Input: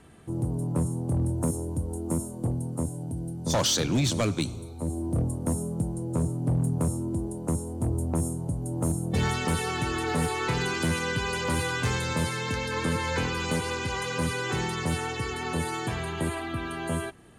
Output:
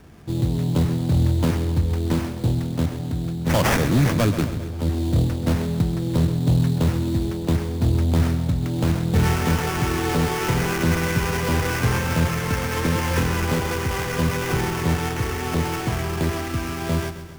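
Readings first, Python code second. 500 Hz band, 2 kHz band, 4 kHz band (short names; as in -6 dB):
+5.5 dB, +4.5 dB, +1.5 dB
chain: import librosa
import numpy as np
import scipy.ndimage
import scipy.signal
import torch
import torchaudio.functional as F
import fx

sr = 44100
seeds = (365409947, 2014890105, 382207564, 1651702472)

p1 = fx.sample_hold(x, sr, seeds[0], rate_hz=4000.0, jitter_pct=20)
p2 = fx.low_shelf(p1, sr, hz=150.0, db=6.0)
p3 = p2 + fx.echo_feedback(p2, sr, ms=132, feedback_pct=57, wet_db=-12.0, dry=0)
y = F.gain(torch.from_numpy(p3), 4.0).numpy()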